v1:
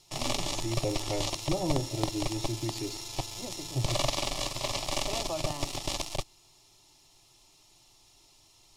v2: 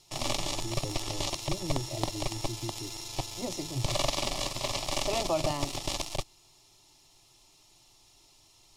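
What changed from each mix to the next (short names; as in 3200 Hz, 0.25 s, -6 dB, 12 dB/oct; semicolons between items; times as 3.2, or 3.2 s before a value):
first voice: add Gaussian blur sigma 19 samples; second voice +6.0 dB; reverb: off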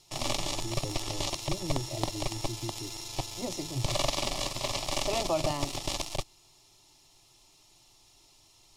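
none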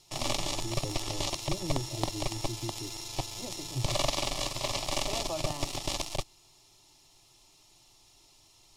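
second voice -7.0 dB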